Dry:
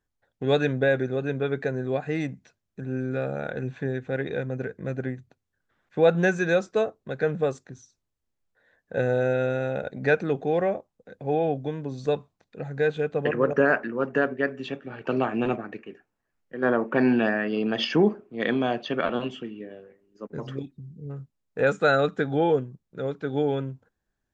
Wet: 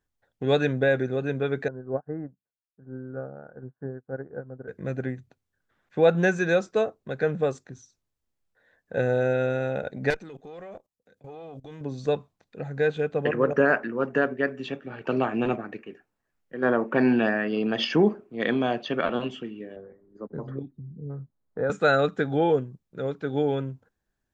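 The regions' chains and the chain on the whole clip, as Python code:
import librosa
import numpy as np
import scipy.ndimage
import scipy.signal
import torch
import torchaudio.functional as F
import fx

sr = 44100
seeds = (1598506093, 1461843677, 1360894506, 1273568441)

y = fx.chain(x, sr, fx.steep_lowpass(hz=1500.0, slope=48),
    fx.upward_expand(threshold_db=-47.0, expansion=2.5), at=(1.68, 4.68))
y = fx.chain(y, sr, fx.high_shelf(hz=3300.0, db=12.0),
    fx.level_steps(step_db=18),
    fx.tube_stage(drive_db=23.0, bias=0.75), at=(10.1, 11.81))
y = fx.chain(y, sr, fx.moving_average(points=16),
    fx.band_squash(depth_pct=40), at=(19.76, 21.7))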